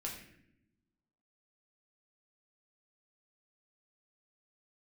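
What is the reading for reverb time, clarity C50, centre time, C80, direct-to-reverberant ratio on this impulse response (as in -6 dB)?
0.80 s, 5.0 dB, 35 ms, 8.0 dB, -2.5 dB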